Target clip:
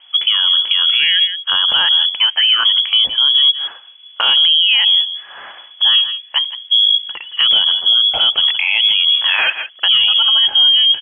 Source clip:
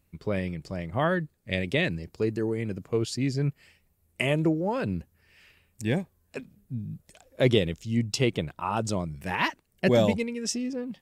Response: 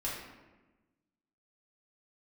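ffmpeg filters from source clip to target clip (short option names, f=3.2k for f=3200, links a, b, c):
-filter_complex "[0:a]highshelf=f=2.6k:g=-5.5,acrossover=split=2500[a][b];[a]acontrast=89[c];[c][b]amix=inputs=2:normalize=0,asplit=2[d][e];[e]adelay=163.3,volume=-21dB,highshelf=f=4k:g=-3.67[f];[d][f]amix=inputs=2:normalize=0,afreqshift=-70,asplit=3[g][h][i];[g]afade=t=out:st=2.17:d=0.02[j];[h]highpass=570,afade=t=in:st=2.17:d=0.02,afade=t=out:st=2.64:d=0.02[k];[i]afade=t=in:st=2.64:d=0.02[l];[j][k][l]amix=inputs=3:normalize=0,lowpass=f=2.9k:t=q:w=0.5098,lowpass=f=2.9k:t=q:w=0.6013,lowpass=f=2.9k:t=q:w=0.9,lowpass=f=2.9k:t=q:w=2.563,afreqshift=-3400,acompressor=threshold=-29dB:ratio=2,alimiter=level_in=24.5dB:limit=-1dB:release=50:level=0:latency=1,volume=-4dB"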